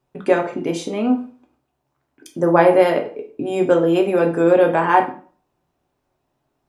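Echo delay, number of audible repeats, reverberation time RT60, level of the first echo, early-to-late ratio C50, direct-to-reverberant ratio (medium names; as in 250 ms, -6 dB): no echo, no echo, 0.45 s, no echo, 11.0 dB, 2.5 dB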